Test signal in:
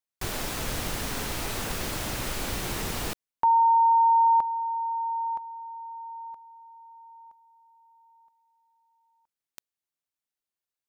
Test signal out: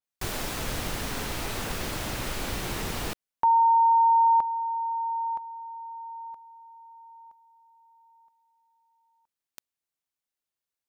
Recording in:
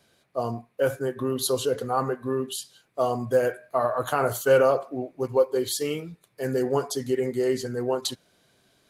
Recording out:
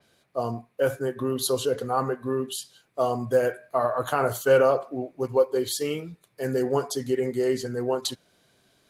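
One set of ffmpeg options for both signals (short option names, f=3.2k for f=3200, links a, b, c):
-af "adynamicequalizer=threshold=0.00891:dfrequency=5000:dqfactor=0.7:tfrequency=5000:tqfactor=0.7:attack=5:release=100:ratio=0.375:range=1.5:mode=cutabove:tftype=highshelf"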